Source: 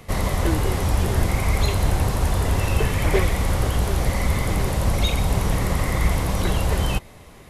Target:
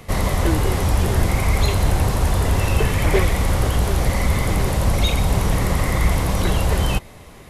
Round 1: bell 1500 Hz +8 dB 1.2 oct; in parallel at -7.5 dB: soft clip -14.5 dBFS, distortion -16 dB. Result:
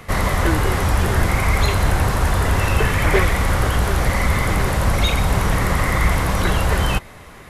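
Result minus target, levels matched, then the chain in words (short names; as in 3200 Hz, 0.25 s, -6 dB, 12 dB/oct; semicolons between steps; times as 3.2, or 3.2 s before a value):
2000 Hz band +4.5 dB
in parallel at -7.5 dB: soft clip -14.5 dBFS, distortion -16 dB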